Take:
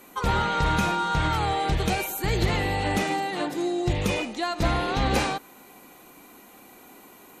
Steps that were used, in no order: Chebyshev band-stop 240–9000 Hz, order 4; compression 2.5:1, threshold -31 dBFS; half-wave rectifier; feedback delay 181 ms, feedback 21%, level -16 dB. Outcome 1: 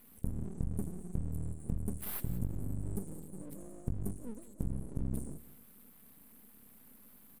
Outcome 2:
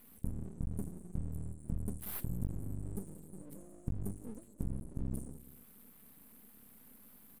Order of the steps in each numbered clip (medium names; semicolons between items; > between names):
Chebyshev band-stop > compression > half-wave rectifier > feedback delay; feedback delay > compression > Chebyshev band-stop > half-wave rectifier